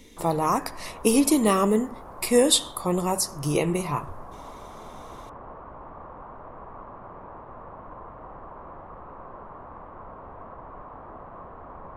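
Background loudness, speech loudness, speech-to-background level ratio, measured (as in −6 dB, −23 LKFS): −43.0 LKFS, −23.5 LKFS, 19.5 dB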